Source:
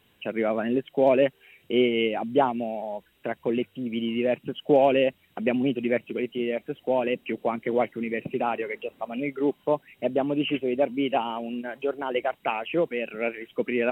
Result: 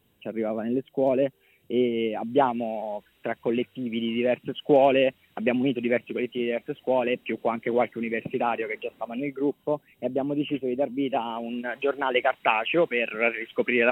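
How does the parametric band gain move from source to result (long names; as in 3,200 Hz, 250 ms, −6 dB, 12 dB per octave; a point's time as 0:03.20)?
parametric band 2,000 Hz 2.8 octaves
0:01.96 −9.5 dB
0:02.46 +2 dB
0:08.89 +2 dB
0:09.56 −7.5 dB
0:10.94 −7.5 dB
0:11.43 +0.5 dB
0:11.80 +8 dB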